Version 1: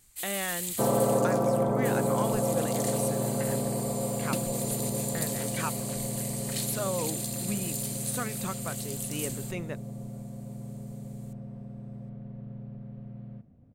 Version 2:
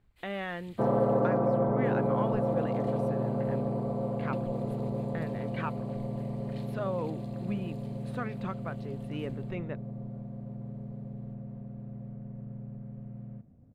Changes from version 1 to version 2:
first sound -8.0 dB; master: add distance through air 390 m

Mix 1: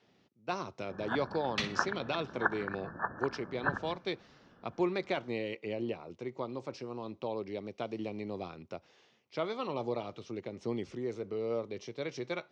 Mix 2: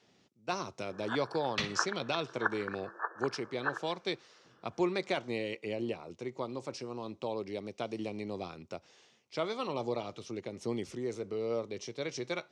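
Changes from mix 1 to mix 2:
speech: remove distance through air 130 m; first sound: add rippled Chebyshev high-pass 320 Hz, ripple 6 dB

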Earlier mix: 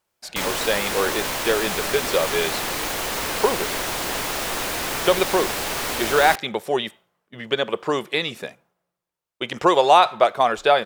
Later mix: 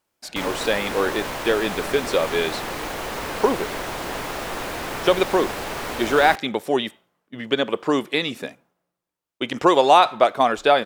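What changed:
speech: add peaking EQ 270 Hz +11 dB 0.36 oct; background: add treble shelf 2.8 kHz -10.5 dB

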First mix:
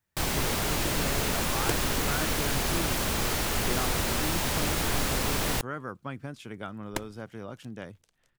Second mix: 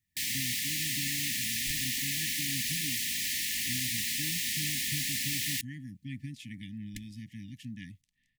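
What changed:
first sound: add high-pass 1.1 kHz 6 dB/octave; second sound -9.0 dB; master: add brick-wall FIR band-stop 300–1700 Hz

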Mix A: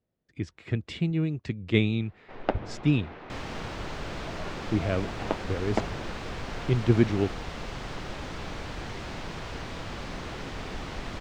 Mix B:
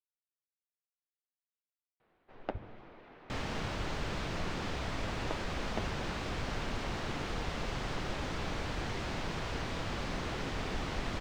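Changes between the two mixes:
speech: muted; first sound -11.0 dB

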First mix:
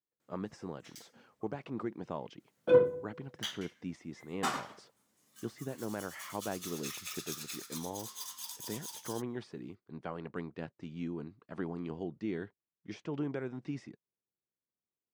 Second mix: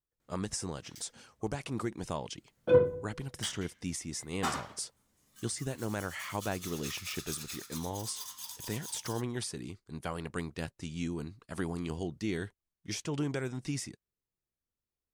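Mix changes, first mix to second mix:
speech: remove tape spacing loss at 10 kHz 35 dB; master: remove high-pass 180 Hz 12 dB/octave

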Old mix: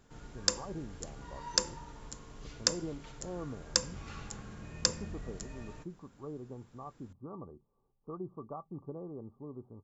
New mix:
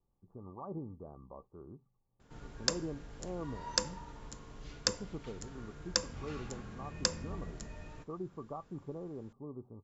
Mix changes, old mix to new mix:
background: entry +2.20 s; master: add distance through air 56 m

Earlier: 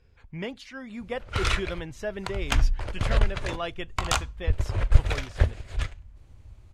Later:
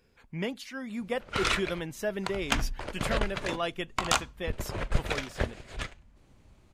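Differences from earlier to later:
speech: remove distance through air 59 m; master: add resonant low shelf 130 Hz -10 dB, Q 1.5

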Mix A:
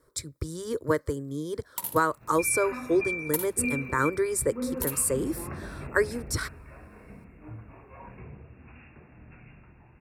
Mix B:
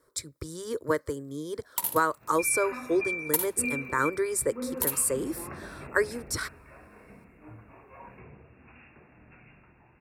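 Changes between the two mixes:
first sound +4.0 dB; master: add bass shelf 190 Hz -9.5 dB

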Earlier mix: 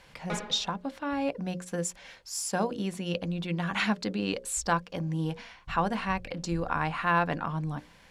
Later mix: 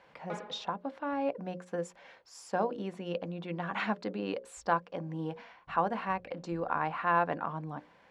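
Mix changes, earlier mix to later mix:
background -3.5 dB; master: add band-pass filter 670 Hz, Q 0.65

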